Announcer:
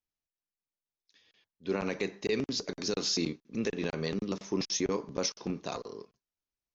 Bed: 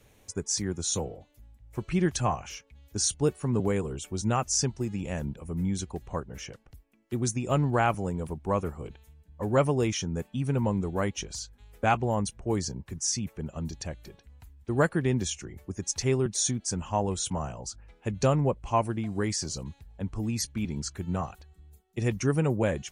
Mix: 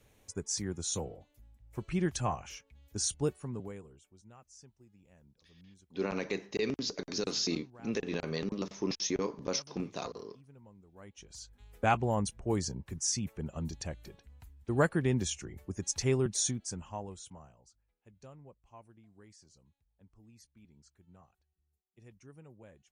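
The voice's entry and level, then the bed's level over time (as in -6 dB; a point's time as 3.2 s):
4.30 s, -2.0 dB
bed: 3.24 s -5.5 dB
4.23 s -29.5 dB
10.87 s -29.5 dB
11.59 s -3 dB
16.39 s -3 dB
17.87 s -28.5 dB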